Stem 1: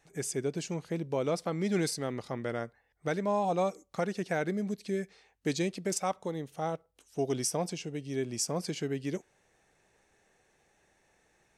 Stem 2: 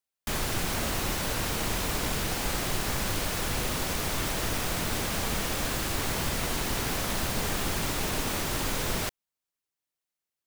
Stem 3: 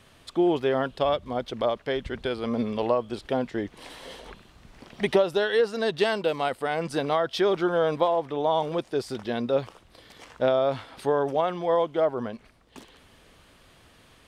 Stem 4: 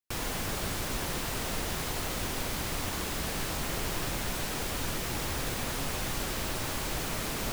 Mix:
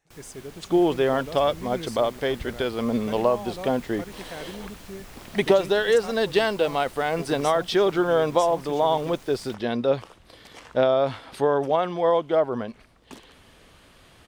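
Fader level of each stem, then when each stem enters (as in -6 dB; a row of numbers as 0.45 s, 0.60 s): -7.0 dB, -20.0 dB, +2.5 dB, -16.0 dB; 0.00 s, 0.45 s, 0.35 s, 0.00 s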